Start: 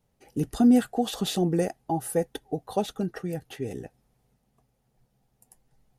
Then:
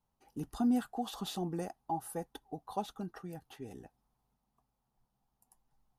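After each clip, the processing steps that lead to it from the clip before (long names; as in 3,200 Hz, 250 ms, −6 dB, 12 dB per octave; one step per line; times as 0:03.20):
graphic EQ with 10 bands 125 Hz −6 dB, 500 Hz −9 dB, 1,000 Hz +10 dB, 2,000 Hz −7 dB, 8,000 Hz −4 dB
level −8.5 dB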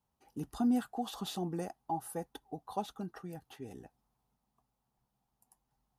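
high-pass filter 42 Hz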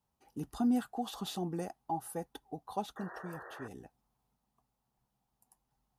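sound drawn into the spectrogram noise, 0:02.96–0:03.68, 340–1,900 Hz −49 dBFS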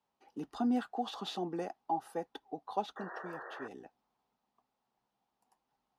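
three-way crossover with the lows and the highs turned down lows −19 dB, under 230 Hz, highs −19 dB, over 5,400 Hz
level +2.5 dB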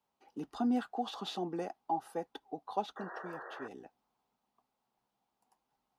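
notch filter 1,800 Hz, Q 25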